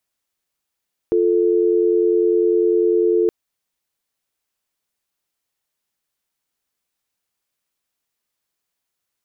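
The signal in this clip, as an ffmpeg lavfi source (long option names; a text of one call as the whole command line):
ffmpeg -f lavfi -i "aevalsrc='0.158*(sin(2*PI*350*t)+sin(2*PI*440*t))':duration=2.17:sample_rate=44100" out.wav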